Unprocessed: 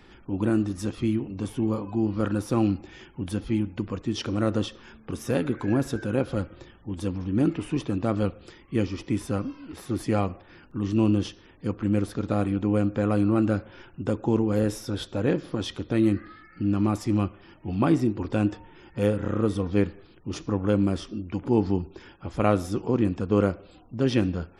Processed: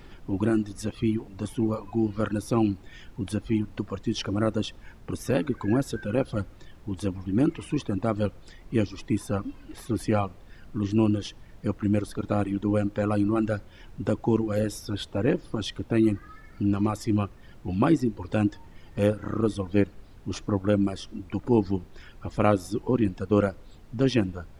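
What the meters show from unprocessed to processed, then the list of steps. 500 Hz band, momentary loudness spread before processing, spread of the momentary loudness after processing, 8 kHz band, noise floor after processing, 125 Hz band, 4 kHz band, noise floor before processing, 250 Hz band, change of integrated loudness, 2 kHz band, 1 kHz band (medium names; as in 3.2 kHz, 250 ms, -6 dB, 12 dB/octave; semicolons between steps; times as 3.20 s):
0.0 dB, 12 LU, 11 LU, +0.5 dB, -49 dBFS, -1.5 dB, +0.5 dB, -53 dBFS, -1.0 dB, -0.5 dB, 0.0 dB, +0.5 dB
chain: reverb removal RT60 1.5 s; added noise brown -47 dBFS; trim +1 dB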